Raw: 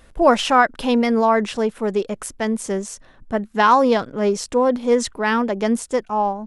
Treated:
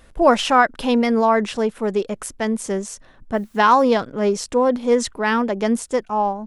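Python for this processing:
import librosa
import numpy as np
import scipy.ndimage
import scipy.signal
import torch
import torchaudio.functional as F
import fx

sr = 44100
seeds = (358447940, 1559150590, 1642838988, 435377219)

y = fx.quant_dither(x, sr, seeds[0], bits=10, dither='triangular', at=(3.34, 3.84))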